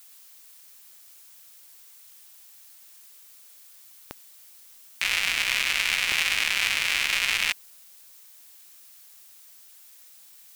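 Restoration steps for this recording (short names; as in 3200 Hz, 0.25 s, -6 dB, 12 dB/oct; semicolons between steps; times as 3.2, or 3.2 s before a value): de-click; denoiser 23 dB, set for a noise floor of -51 dBFS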